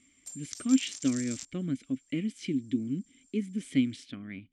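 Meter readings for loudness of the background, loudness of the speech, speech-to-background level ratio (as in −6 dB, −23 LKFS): −40.5 LKFS, −32.0 LKFS, 8.5 dB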